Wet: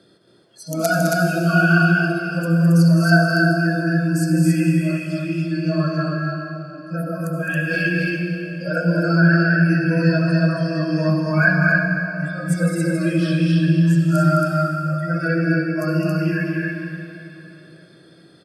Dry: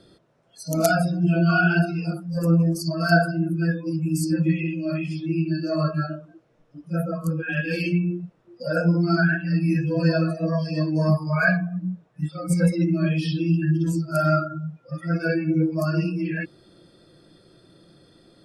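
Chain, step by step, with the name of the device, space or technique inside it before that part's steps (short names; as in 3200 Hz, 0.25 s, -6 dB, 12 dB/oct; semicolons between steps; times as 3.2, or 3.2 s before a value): stadium PA (HPF 130 Hz; bell 1600 Hz +5 dB 0.33 oct; loudspeakers at several distances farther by 72 m -7 dB, 94 m -2 dB; reverb RT60 3.3 s, pre-delay 62 ms, DRR 4.5 dB); bell 920 Hz -2 dB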